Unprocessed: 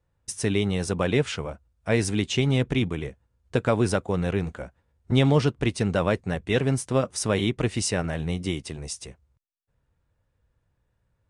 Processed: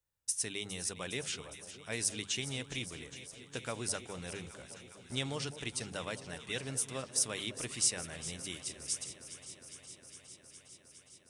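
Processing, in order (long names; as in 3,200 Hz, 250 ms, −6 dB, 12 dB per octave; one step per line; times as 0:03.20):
first-order pre-emphasis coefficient 0.9
mains-hum notches 50/100/150/200 Hz
delay that swaps between a low-pass and a high-pass 205 ms, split 950 Hz, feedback 88%, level −12.5 dB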